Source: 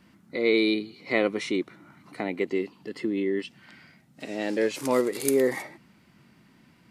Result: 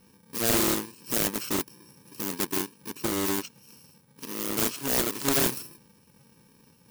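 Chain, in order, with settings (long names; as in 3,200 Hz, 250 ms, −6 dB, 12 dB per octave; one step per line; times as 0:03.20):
samples in bit-reversed order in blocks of 64 samples
highs frequency-modulated by the lows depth 0.79 ms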